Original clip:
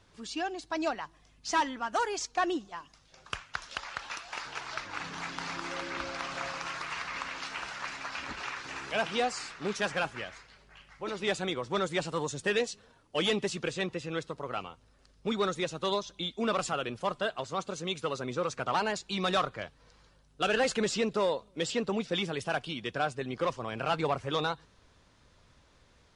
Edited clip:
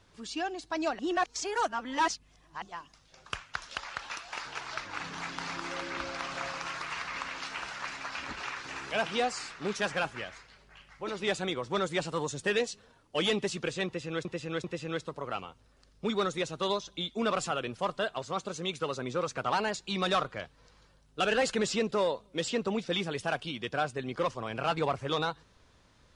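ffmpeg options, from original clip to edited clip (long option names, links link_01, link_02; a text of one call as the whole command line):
ffmpeg -i in.wav -filter_complex "[0:a]asplit=5[link_01][link_02][link_03][link_04][link_05];[link_01]atrim=end=0.992[link_06];[link_02]atrim=start=0.988:end=2.622,asetpts=PTS-STARTPTS,areverse[link_07];[link_03]atrim=start=2.618:end=14.252[link_08];[link_04]atrim=start=13.858:end=14.252[link_09];[link_05]atrim=start=13.858[link_10];[link_06][link_07]acrossfade=duration=0.004:curve1=hsin:curve2=hsin[link_11];[link_11][link_08]acrossfade=duration=0.004:curve1=hsin:curve2=hsin[link_12];[link_12][link_09]acrossfade=duration=0.004:curve1=hsin:curve2=hsin[link_13];[link_13][link_10]acrossfade=duration=0.004:curve1=hsin:curve2=hsin" out.wav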